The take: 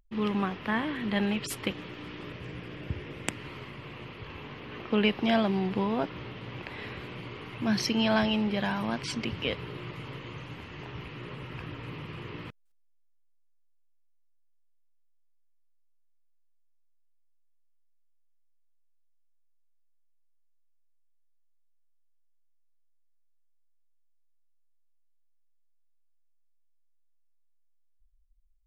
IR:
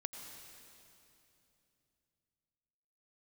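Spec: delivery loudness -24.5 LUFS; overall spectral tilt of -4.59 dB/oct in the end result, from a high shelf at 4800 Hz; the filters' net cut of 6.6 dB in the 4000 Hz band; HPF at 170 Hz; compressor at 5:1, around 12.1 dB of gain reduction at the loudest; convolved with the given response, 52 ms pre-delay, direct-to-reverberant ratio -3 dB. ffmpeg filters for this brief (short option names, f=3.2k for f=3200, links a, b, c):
-filter_complex "[0:a]highpass=170,equalizer=f=4k:t=o:g=-8,highshelf=f=4.8k:g=-4.5,acompressor=threshold=-35dB:ratio=5,asplit=2[a][b];[1:a]atrim=start_sample=2205,adelay=52[c];[b][c]afir=irnorm=-1:irlink=0,volume=4.5dB[d];[a][d]amix=inputs=2:normalize=0,volume=12dB"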